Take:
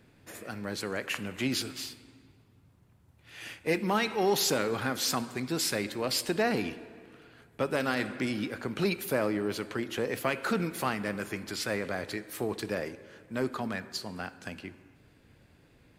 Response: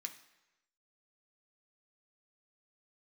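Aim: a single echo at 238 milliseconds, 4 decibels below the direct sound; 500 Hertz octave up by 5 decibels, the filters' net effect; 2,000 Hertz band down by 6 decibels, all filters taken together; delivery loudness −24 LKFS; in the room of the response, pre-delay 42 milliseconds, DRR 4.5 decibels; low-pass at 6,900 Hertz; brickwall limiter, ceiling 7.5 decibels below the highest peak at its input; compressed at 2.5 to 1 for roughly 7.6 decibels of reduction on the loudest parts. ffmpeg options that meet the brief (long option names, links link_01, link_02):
-filter_complex "[0:a]lowpass=6900,equalizer=frequency=500:width_type=o:gain=6.5,equalizer=frequency=2000:width_type=o:gain=-8.5,acompressor=threshold=-31dB:ratio=2.5,alimiter=level_in=3dB:limit=-24dB:level=0:latency=1,volume=-3dB,aecho=1:1:238:0.631,asplit=2[link_01][link_02];[1:a]atrim=start_sample=2205,adelay=42[link_03];[link_02][link_03]afir=irnorm=-1:irlink=0,volume=-1.5dB[link_04];[link_01][link_04]amix=inputs=2:normalize=0,volume=11.5dB"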